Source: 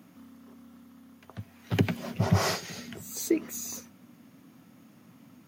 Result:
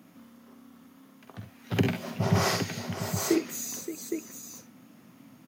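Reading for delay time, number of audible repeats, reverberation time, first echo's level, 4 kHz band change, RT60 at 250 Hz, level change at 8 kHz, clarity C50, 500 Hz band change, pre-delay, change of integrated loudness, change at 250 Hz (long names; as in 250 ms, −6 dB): 47 ms, 3, no reverb audible, −7.0 dB, +2.0 dB, no reverb audible, +2.5 dB, no reverb audible, +2.5 dB, no reverb audible, +0.5 dB, +1.5 dB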